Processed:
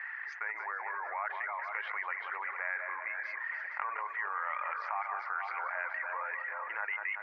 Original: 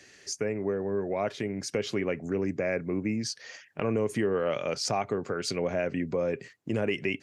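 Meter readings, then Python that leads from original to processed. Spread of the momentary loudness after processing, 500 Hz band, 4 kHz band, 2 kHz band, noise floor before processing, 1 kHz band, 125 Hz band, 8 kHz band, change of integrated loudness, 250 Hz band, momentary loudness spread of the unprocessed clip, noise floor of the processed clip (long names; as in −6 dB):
3 LU, −21.0 dB, −21.0 dB, +4.5 dB, −57 dBFS, +2.5 dB, below −40 dB, below −35 dB, −5.5 dB, below −40 dB, 6 LU, −43 dBFS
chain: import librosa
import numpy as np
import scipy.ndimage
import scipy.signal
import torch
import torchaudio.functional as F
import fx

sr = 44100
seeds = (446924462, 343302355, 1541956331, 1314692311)

p1 = fx.reverse_delay_fb(x, sr, ms=229, feedback_pct=53, wet_db=-8.0)
p2 = fx.dereverb_blind(p1, sr, rt60_s=0.6)
p3 = scipy.signal.sosfilt(scipy.signal.ellip(3, 1.0, 70, [890.0, 2000.0], 'bandpass', fs=sr, output='sos'), p2)
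p4 = p3 + fx.echo_feedback(p3, sr, ms=185, feedback_pct=43, wet_db=-13.5, dry=0)
p5 = fx.env_flatten(p4, sr, amount_pct=70)
y = p5 * librosa.db_to_amplitude(1.5)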